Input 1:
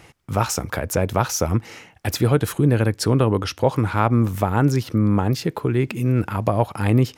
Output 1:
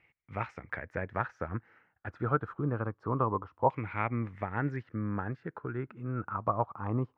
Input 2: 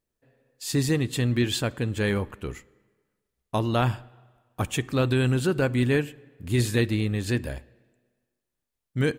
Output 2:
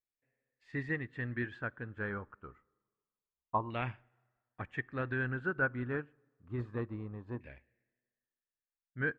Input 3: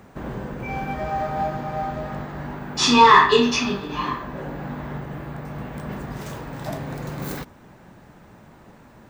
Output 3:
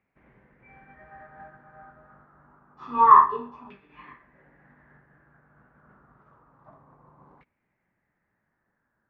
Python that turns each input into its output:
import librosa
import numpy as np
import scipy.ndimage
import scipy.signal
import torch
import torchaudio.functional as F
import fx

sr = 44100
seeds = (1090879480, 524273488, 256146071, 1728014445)

y = fx.filter_lfo_lowpass(x, sr, shape='saw_down', hz=0.27, low_hz=990.0, high_hz=2300.0, q=5.6)
y = fx.upward_expand(y, sr, threshold_db=-36.0, expansion=1.5)
y = y * librosa.db_to_amplitude(-12.0)